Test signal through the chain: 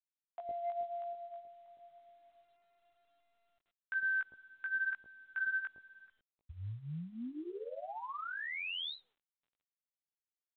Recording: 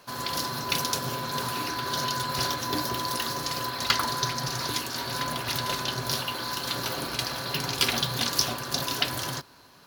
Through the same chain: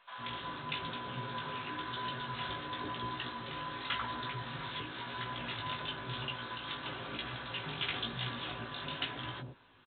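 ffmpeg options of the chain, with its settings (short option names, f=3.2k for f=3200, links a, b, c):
-filter_complex "[0:a]highshelf=f=2.4k:g=5,flanger=delay=16:depth=3.8:speed=0.97,asoftclip=type=tanh:threshold=-18.5dB,acrossover=split=640[a][b];[a]adelay=110[c];[c][b]amix=inputs=2:normalize=0,volume=-5.5dB" -ar 8000 -c:a pcm_mulaw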